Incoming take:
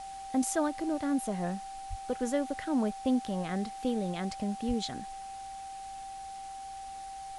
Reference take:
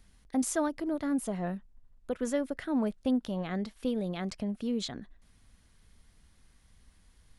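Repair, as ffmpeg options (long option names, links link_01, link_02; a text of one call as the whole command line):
ffmpeg -i in.wav -filter_complex "[0:a]bandreject=frequency=780:width=30,asplit=3[link_01][link_02][link_03];[link_01]afade=type=out:start_time=1.89:duration=0.02[link_04];[link_02]highpass=frequency=140:width=0.5412,highpass=frequency=140:width=1.3066,afade=type=in:start_time=1.89:duration=0.02,afade=type=out:start_time=2.01:duration=0.02[link_05];[link_03]afade=type=in:start_time=2.01:duration=0.02[link_06];[link_04][link_05][link_06]amix=inputs=3:normalize=0,asplit=3[link_07][link_08][link_09];[link_07]afade=type=out:start_time=4.67:duration=0.02[link_10];[link_08]highpass=frequency=140:width=0.5412,highpass=frequency=140:width=1.3066,afade=type=in:start_time=4.67:duration=0.02,afade=type=out:start_time=4.79:duration=0.02[link_11];[link_09]afade=type=in:start_time=4.79:duration=0.02[link_12];[link_10][link_11][link_12]amix=inputs=3:normalize=0,afwtdn=0.0025" out.wav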